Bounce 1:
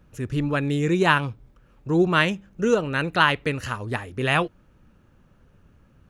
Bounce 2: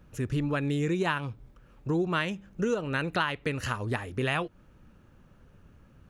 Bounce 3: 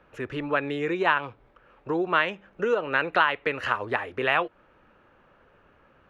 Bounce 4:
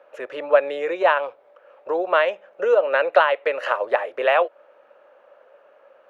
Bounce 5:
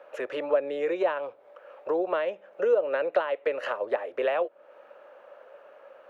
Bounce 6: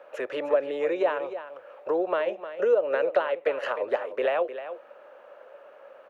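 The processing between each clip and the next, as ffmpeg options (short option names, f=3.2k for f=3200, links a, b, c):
-af "acompressor=threshold=-26dB:ratio=4"
-filter_complex "[0:a]acrossover=split=390 3200:gain=0.112 1 0.0708[a][b][c];[a][b][c]amix=inputs=3:normalize=0,volume=8dB"
-af "highpass=f=570:t=q:w=6"
-filter_complex "[0:a]acrossover=split=400[a][b];[b]acompressor=threshold=-36dB:ratio=3[c];[a][c]amix=inputs=2:normalize=0,volume=2dB"
-af "aecho=1:1:306:0.266,volume=1dB"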